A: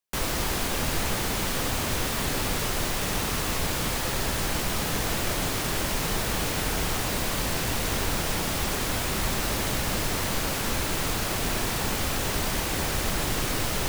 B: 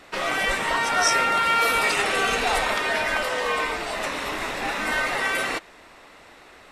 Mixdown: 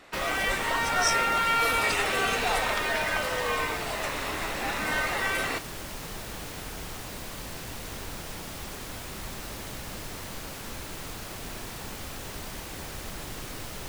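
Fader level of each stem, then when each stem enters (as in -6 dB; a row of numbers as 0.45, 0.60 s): -11.0, -4.0 dB; 0.00, 0.00 s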